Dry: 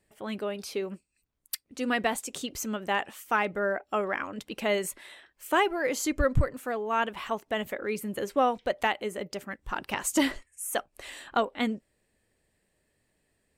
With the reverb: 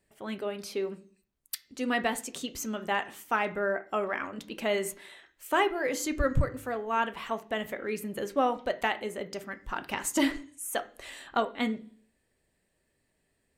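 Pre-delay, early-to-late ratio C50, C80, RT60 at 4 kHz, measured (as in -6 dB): 3 ms, 16.5 dB, 21.0 dB, n/a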